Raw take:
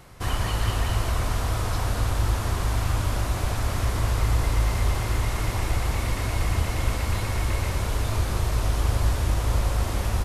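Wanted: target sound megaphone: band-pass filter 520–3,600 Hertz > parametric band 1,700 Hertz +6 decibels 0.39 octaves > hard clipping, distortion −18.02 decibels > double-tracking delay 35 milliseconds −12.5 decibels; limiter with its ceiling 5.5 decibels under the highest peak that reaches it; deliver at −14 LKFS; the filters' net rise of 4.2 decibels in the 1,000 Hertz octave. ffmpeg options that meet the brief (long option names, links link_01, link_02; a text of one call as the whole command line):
ffmpeg -i in.wav -filter_complex "[0:a]equalizer=frequency=1000:width_type=o:gain=5,alimiter=limit=-15.5dB:level=0:latency=1,highpass=520,lowpass=3600,equalizer=frequency=1700:width_type=o:width=0.39:gain=6,asoftclip=type=hard:threshold=-26.5dB,asplit=2[link_01][link_02];[link_02]adelay=35,volume=-12.5dB[link_03];[link_01][link_03]amix=inputs=2:normalize=0,volume=18dB" out.wav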